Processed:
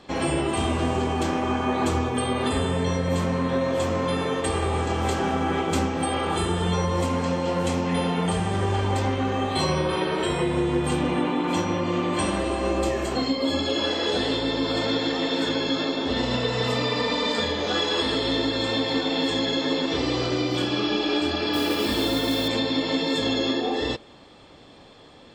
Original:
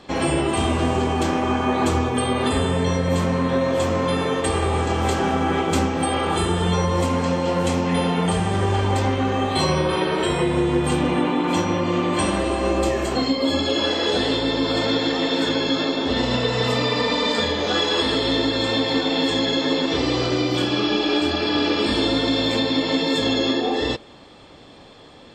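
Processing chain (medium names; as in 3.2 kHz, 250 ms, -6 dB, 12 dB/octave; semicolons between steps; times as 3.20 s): 21.53–22.48 s: modulation noise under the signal 17 dB; trim -3.5 dB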